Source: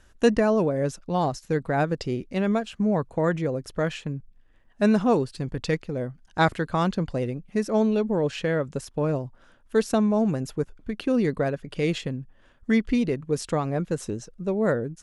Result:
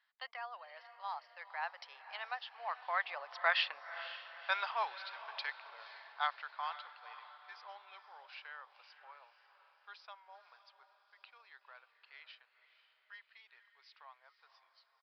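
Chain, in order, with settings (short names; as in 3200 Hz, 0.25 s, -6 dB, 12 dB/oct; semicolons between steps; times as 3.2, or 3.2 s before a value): tape stop at the end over 0.95 s; Doppler pass-by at 3.83, 32 m/s, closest 10 m; steep high-pass 850 Hz 36 dB/oct; on a send: diffused feedback echo 0.505 s, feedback 53%, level -13 dB; on the sum: downsampling 11025 Hz; gain +7.5 dB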